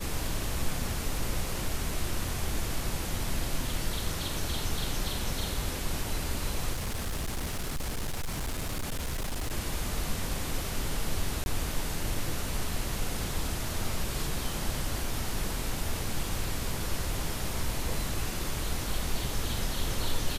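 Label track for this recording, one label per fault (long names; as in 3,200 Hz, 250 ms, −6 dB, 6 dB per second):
6.730000	9.530000	clipping −28.5 dBFS
11.440000	11.460000	drop-out 21 ms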